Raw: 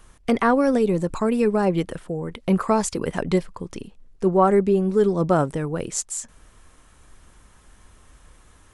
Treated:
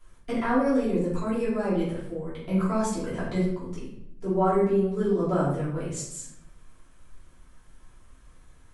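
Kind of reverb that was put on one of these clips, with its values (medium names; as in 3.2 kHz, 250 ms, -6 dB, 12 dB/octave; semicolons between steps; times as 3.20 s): simulated room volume 170 m³, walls mixed, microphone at 3 m; trim -16.5 dB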